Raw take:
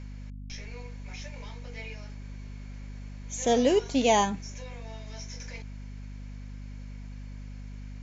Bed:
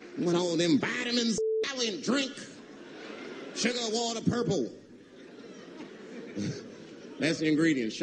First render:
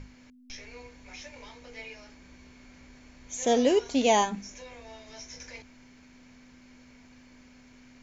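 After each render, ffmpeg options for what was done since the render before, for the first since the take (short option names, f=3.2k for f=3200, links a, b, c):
-af "bandreject=f=50:t=h:w=6,bandreject=f=100:t=h:w=6,bandreject=f=150:t=h:w=6,bandreject=f=200:t=h:w=6"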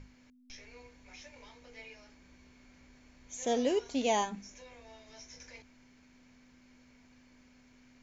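-af "volume=-7dB"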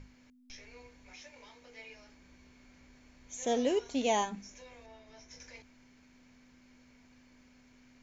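-filter_complex "[0:a]asettb=1/sr,asplit=3[a][b][c];[a]atrim=end=1.134[d];[b]atrim=start=1.13:end=1.89,asetpts=PTS-STARTPTS,afade=t=in:d=0.004:c=qsin,afade=t=out:st=0.756:d=0.004:c=qsin,lowshelf=f=120:g=-10[e];[c]atrim=start=1.886[f];[d][e]acrossfade=d=0.004:c1=hsin:c2=qsin[g];[g][f]acrossfade=d=0.004:c1=qsin:c2=hsin,asettb=1/sr,asplit=3[h][i][j];[h]atrim=end=3.354[k];[i]atrim=start=3.35:end=4.27,asetpts=PTS-STARTPTS,afade=t=in:d=0.004:c=qsin,afade=t=out:st=0.916:d=0.004:c=qsin,bandreject=f=4.8k:w=12[l];[j]atrim=start=4.266[m];[k][l]acrossfade=d=0.004:c1=hsin:c2=qsin[n];[n][m]acrossfade=d=0.004:c1=qsin:c2=hsin,asettb=1/sr,asplit=3[o][p][q];[o]atrim=end=4.864[r];[p]atrim=start=4.86:end=5.31,asetpts=PTS-STARTPTS,afade=t=in:d=0.004:c=qsin,afade=t=out:st=0.446:d=0.004:c=qsin,highshelf=f=3.8k:g=-10.5[s];[q]atrim=start=5.306[t];[r][s]acrossfade=d=0.004:c1=hsin:c2=qsin[u];[u][t]acrossfade=d=0.004:c1=qsin:c2=hsin"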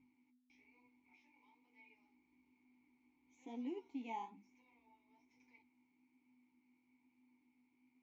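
-filter_complex "[0:a]flanger=delay=7.7:depth=9.9:regen=32:speed=1.1:shape=sinusoidal,asplit=3[a][b][c];[a]bandpass=f=300:t=q:w=8,volume=0dB[d];[b]bandpass=f=870:t=q:w=8,volume=-6dB[e];[c]bandpass=f=2.24k:t=q:w=8,volume=-9dB[f];[d][e][f]amix=inputs=3:normalize=0"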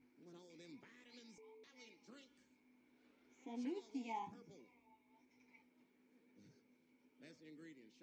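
-filter_complex "[1:a]volume=-33.5dB[a];[0:a][a]amix=inputs=2:normalize=0"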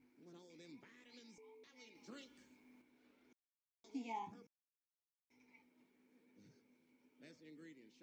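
-filter_complex "[0:a]asettb=1/sr,asplit=3[a][b][c];[a]atrim=end=1.954[d];[b]atrim=start=1.95:end=2.82,asetpts=PTS-STARTPTS,afade=t=in:d=0.004:c=qsin,afade=t=out:st=0.866:d=0.004:c=qsin,acontrast=52[e];[c]atrim=start=2.816[f];[d][e]acrossfade=d=0.004:c1=hsin:c2=qsin[g];[g][f]acrossfade=d=0.004:c1=qsin:c2=hsin,asplit=5[h][i][j][k][l];[h]atrim=end=3.33,asetpts=PTS-STARTPTS,afade=t=out:st=3.326:d=0.004:c=hsin[m];[i]atrim=start=3.33:end=3.84,asetpts=PTS-STARTPTS,volume=0[n];[j]atrim=start=3.84:end=4.47,asetpts=PTS-STARTPTS,afade=t=in:d=0.004:c=hsin,afade=t=out:st=0.626:d=0.004:c=hsin[o];[k]atrim=start=4.47:end=5.3,asetpts=PTS-STARTPTS,volume=0[p];[l]atrim=start=5.3,asetpts=PTS-STARTPTS,afade=t=in:d=0.004:c=hsin[q];[m][n][o][p][q]concat=n=5:v=0:a=1"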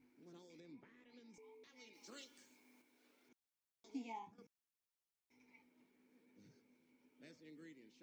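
-filter_complex "[0:a]asettb=1/sr,asplit=3[a][b][c];[a]atrim=end=0.604[d];[b]atrim=start=0.6:end=1.34,asetpts=PTS-STARTPTS,afade=t=in:d=0.004:c=qsin,afade=t=out:st=0.736:d=0.004:c=qsin,lowpass=f=1.4k:p=1[e];[c]atrim=start=1.336[f];[d][e]acrossfade=d=0.004:c1=hsin:c2=qsin[g];[g][f]acrossfade=d=0.004:c1=qsin:c2=hsin,asettb=1/sr,asplit=3[h][i][j];[h]atrim=end=1.934[k];[i]atrim=start=1.93:end=3.29,asetpts=PTS-STARTPTS,afade=t=in:d=0.004:c=qsin,afade=t=out:st=1.356:d=0.004:c=qsin,bass=f=250:g=-11,treble=f=4k:g=8[l];[j]atrim=start=3.286[m];[k][l]acrossfade=d=0.004:c1=hsin:c2=qsin[n];[n][m]acrossfade=d=0.004:c1=qsin:c2=hsin,asplit=2[o][p];[o]atrim=end=4.38,asetpts=PTS-STARTPTS,afade=t=out:st=3.93:d=0.45:silence=0.223872[q];[p]atrim=start=4.38,asetpts=PTS-STARTPTS,afade=t=in:d=0.004:c=hsin:silence=0.223872[r];[q][r]concat=n=2:v=0:a=1"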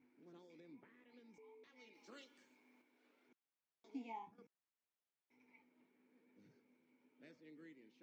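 -af "highpass=f=150:p=1,bass=f=250:g=-1,treble=f=4k:g=-13"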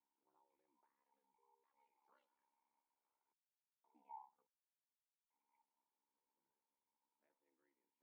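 -af "aeval=exprs='val(0)*sin(2*PI*34*n/s)':c=same,bandpass=f=930:t=q:w=7.2:csg=0"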